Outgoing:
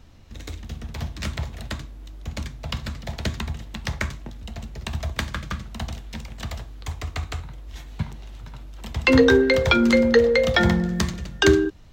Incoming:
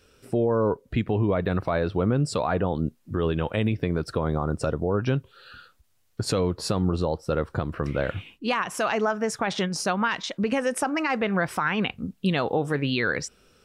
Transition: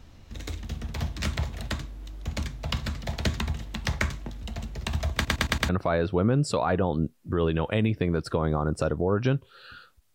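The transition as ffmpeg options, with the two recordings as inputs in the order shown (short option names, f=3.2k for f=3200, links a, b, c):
-filter_complex "[0:a]apad=whole_dur=10.14,atrim=end=10.14,asplit=5[a][b][c][d][e];[a]atrim=end=5.252[f];[b]atrim=start=5.138:end=5.252[g];[c]atrim=start=5.138:end=5.252[h];[d]atrim=start=5.138:end=5.252[i];[e]atrim=start=5.138:end=5.252[j];[1:a]atrim=start=1.508:end=5.96[k];[f][g]acrossfade=d=0.004:c1=hsin:c2=hsin[l];[l][h]acrossfade=d=0.004:c1=hsin:c2=hsin[m];[m][i]acrossfade=d=0.004:c1=hsin:c2=hsin[n];[n][j]acrossfade=d=0.004:c1=hsin:c2=hsin[o];[o][k]acrossfade=d=0.004:c1=hsin:c2=hsin"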